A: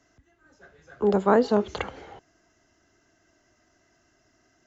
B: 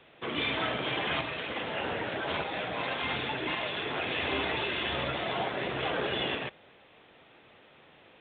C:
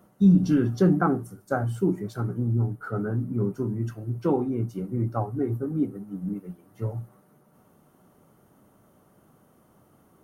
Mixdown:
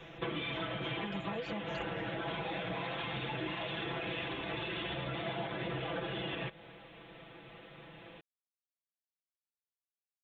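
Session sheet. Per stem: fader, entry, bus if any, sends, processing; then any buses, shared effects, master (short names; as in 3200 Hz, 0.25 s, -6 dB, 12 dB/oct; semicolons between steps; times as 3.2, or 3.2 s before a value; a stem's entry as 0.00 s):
-8.0 dB, 0.00 s, bus A, no send, reverb removal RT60 0.66 s; limiter -14 dBFS, peak gain reduction 5.5 dB
+0.5 dB, 0.00 s, bus A, no send, vocal rider; limiter -24.5 dBFS, peak gain reduction 6.5 dB
off
bus A: 0.0 dB, low shelf 210 Hz +10 dB; compressor 10:1, threshold -37 dBFS, peak gain reduction 15 dB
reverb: off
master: comb 6 ms, depth 91%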